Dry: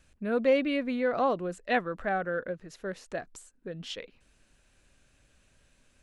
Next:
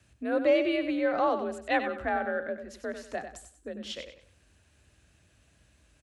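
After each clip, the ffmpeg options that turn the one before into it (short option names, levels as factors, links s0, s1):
-af "afreqshift=46,aecho=1:1:95|190|285|380:0.355|0.11|0.0341|0.0106"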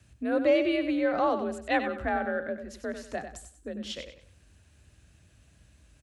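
-af "bass=f=250:g=6,treble=f=4000:g=2"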